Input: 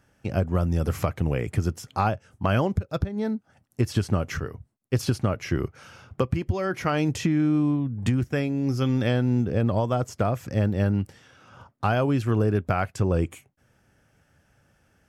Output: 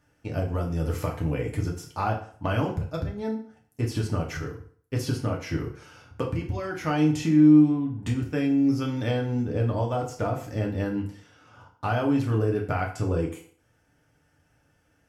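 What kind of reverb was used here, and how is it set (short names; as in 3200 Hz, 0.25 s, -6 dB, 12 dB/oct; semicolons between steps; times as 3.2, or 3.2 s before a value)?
FDN reverb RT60 0.51 s, low-frequency decay 0.85×, high-frequency decay 0.85×, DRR -1 dB; gain -6 dB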